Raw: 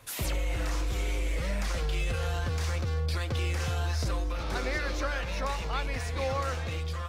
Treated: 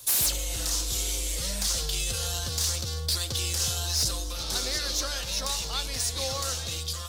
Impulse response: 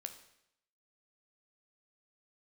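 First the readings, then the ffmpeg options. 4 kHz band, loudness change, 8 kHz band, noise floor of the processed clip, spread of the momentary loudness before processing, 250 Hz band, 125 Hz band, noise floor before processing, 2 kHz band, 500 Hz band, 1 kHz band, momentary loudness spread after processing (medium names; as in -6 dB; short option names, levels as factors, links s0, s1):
+12.0 dB, +4.5 dB, +16.5 dB, -34 dBFS, 2 LU, -4.0 dB, -4.0 dB, -34 dBFS, -3.0 dB, -3.5 dB, -3.5 dB, 4 LU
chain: -filter_complex "[0:a]aexciter=amount=9.9:drive=3.7:freq=3300,aeval=exprs='0.188*(abs(mod(val(0)/0.188+3,4)-2)-1)':c=same,asplit=2[s0][s1];[1:a]atrim=start_sample=2205[s2];[s1][s2]afir=irnorm=-1:irlink=0,volume=0.596[s3];[s0][s3]amix=inputs=2:normalize=0,volume=0.473"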